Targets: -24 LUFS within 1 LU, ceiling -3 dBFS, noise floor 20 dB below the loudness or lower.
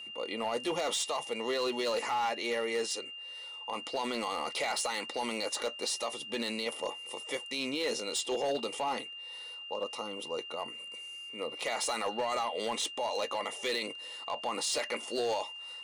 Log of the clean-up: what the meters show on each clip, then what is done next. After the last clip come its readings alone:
clipped 1.1%; flat tops at -26.0 dBFS; steady tone 2800 Hz; tone level -42 dBFS; loudness -34.0 LUFS; peak -26.0 dBFS; loudness target -24.0 LUFS
-> clip repair -26 dBFS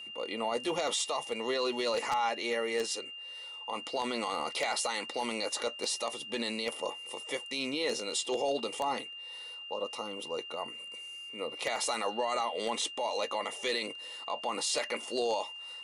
clipped 0.0%; steady tone 2800 Hz; tone level -42 dBFS
-> notch 2800 Hz, Q 30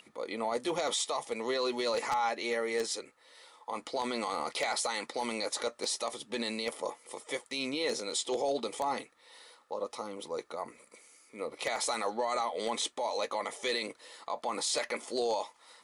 steady tone none; loudness -34.0 LUFS; peak -16.5 dBFS; loudness target -24.0 LUFS
-> gain +10 dB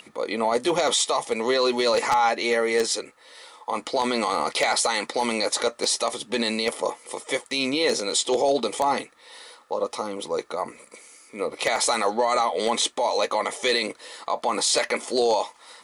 loudness -24.0 LUFS; peak -6.5 dBFS; noise floor -54 dBFS

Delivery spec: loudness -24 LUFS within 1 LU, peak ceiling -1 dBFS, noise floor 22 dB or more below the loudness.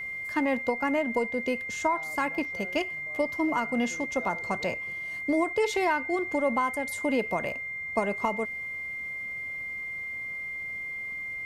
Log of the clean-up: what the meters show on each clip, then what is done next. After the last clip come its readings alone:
steady tone 2100 Hz; tone level -33 dBFS; loudness -29.5 LUFS; peak -12.5 dBFS; loudness target -24.0 LUFS
-> notch 2100 Hz, Q 30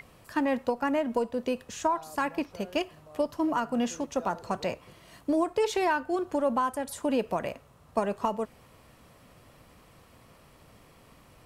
steady tone none; loudness -30.0 LUFS; peak -13.0 dBFS; loudness target -24.0 LUFS
-> gain +6 dB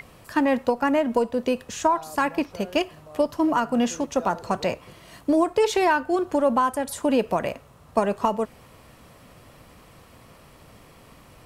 loudness -24.0 LUFS; peak -7.0 dBFS; noise floor -51 dBFS

